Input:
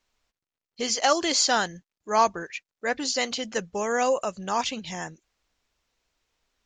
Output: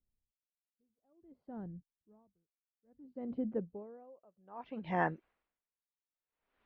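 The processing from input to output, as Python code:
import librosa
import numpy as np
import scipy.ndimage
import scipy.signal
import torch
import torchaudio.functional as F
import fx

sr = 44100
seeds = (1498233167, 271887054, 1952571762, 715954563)

y = fx.low_shelf(x, sr, hz=130.0, db=-12.0)
y = fx.filter_sweep_lowpass(y, sr, from_hz=120.0, to_hz=2700.0, start_s=2.87, end_s=5.43, q=0.74)
y = fx.air_absorb(y, sr, metres=280.0)
y = y * 10.0 ** (-38 * (0.5 - 0.5 * np.cos(2.0 * np.pi * 0.59 * np.arange(len(y)) / sr)) / 20.0)
y = y * librosa.db_to_amplitude(7.5)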